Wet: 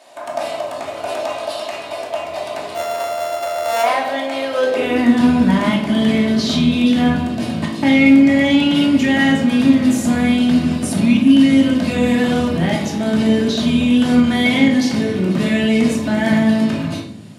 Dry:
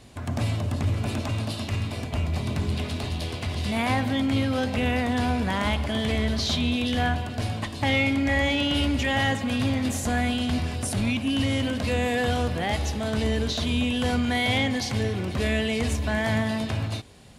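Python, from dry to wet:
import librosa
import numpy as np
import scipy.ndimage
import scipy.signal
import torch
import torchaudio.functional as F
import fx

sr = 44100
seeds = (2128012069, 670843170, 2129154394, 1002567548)

y = fx.sample_sort(x, sr, block=64, at=(2.74, 3.82), fade=0.02)
y = fx.filter_sweep_highpass(y, sr, from_hz=660.0, to_hz=200.0, start_s=4.48, end_s=5.2, q=3.5)
y = fx.room_shoebox(y, sr, seeds[0], volume_m3=670.0, walls='furnished', distance_m=2.7)
y = y * librosa.db_to_amplitude(2.0)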